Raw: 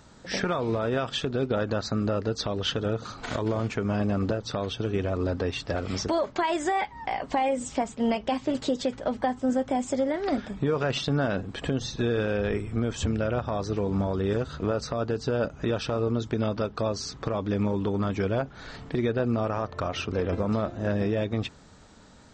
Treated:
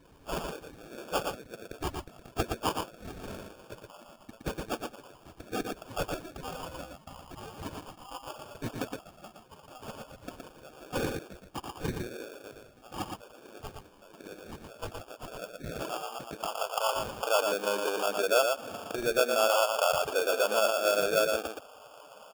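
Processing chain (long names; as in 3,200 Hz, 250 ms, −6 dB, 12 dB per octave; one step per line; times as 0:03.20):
high-pass filter 170 Hz
in parallel at +1.5 dB: downward compressor, threshold −36 dBFS, peak gain reduction 14 dB
on the sum: high-pass filter sweep 3,900 Hz → 600 Hz, 0:14.48–0:17.38
spectral peaks only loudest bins 32
sample-rate reduction 2,000 Hz, jitter 0%
on a send: single-tap delay 117 ms −4.5 dB
on the sum: level −4 dB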